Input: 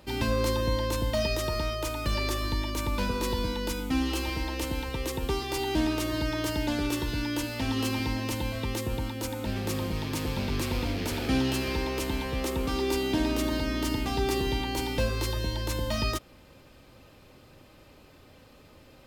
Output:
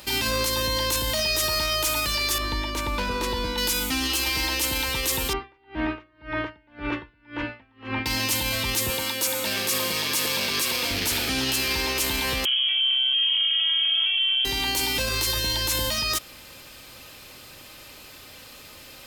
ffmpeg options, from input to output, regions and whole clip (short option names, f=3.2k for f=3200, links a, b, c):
-filter_complex "[0:a]asettb=1/sr,asplit=3[a][b][c];[a]atrim=end=2.384[d];[b]atrim=start=2.38:end=3.58,asetpts=PTS-STARTPTS,afade=t=in:d=0.004:c=qsin,afade=t=out:st=1.196:d=0.004:c=qsin,lowpass=f=1.2k:p=1,equalizer=f=130:t=o:w=1.4:g=-4.5[e];[c]atrim=start=3.576[f];[d][e]acrossfade=d=0.004:c1=hsin:c2=qsin[g];[g][f]acrossfade=d=0.004:c1=qsin:c2=hsin,asettb=1/sr,asplit=3[h][i][j];[h]atrim=end=5.334[k];[i]atrim=start=5.33:end=8.06,asetpts=PTS-STARTPTS,afade=t=in:d=0.004:c=qsin,afade=t=out:st=2.726:d=0.004:c=qsin,lowpass=f=2.1k:w=0.5412,lowpass=f=2.1k:w=1.3066,aeval=exprs='val(0)*pow(10,-36*(0.5-0.5*cos(2*PI*1.9*n/s))/20)':c=same[l];[j]atrim=start=8.056[m];[k][l]acrossfade=d=0.004:c1=hsin:c2=qsin[n];[n][m]acrossfade=d=0.004:c1=qsin:c2=hsin,asettb=1/sr,asplit=3[o][p][q];[o]atrim=end=8.904[r];[p]atrim=start=8.9:end=10.91,asetpts=PTS-STARTPTS,afade=t=in:d=0.004:c=qsin,afade=t=out:st=2.006:d=0.004:c=qsin,highpass=200,aecho=1:1:1.8:0.32,atrim=end_sample=88641[s];[q]atrim=start=10.906[t];[r][s]acrossfade=d=0.004:c1=hsin:c2=qsin[u];[u][t]acrossfade=d=0.004:c1=qsin:c2=hsin,asettb=1/sr,asplit=3[v][w][x];[v]atrim=end=12.454[y];[w]atrim=start=12.45:end=14.45,asetpts=PTS-STARTPTS,afade=t=in:d=0.004:c=qsin,afade=t=out:st=1.996:d=0.004:c=qsin,highpass=220,tiltshelf=f=1.5k:g=9.5,lowpass=f=3k:t=q:w=0.5098,lowpass=f=3k:t=q:w=0.6013,lowpass=f=3k:t=q:w=0.9,lowpass=f=3k:t=q:w=2.563,afreqshift=-3500[z];[x]atrim=start=14.446[aa];[y][z]acrossfade=d=0.004:c1=hsin:c2=qsin[ab];[ab][aa]acrossfade=d=0.004:c1=qsin:c2=hsin,tiltshelf=f=1.1k:g=-7.5,alimiter=level_in=2dB:limit=-24dB:level=0:latency=1:release=15,volume=-2dB,highshelf=f=6.2k:g=5.5,volume=8.5dB"